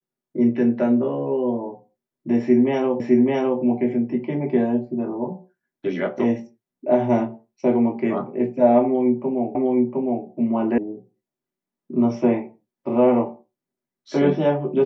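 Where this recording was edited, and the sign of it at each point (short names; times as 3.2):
3 repeat of the last 0.61 s
9.55 repeat of the last 0.71 s
10.78 sound cut off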